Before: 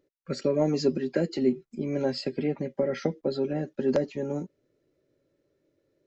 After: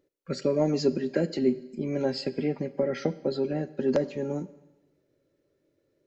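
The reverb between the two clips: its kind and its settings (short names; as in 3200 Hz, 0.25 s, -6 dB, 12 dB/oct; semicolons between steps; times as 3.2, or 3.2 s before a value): Schroeder reverb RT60 1.1 s, combs from 32 ms, DRR 16.5 dB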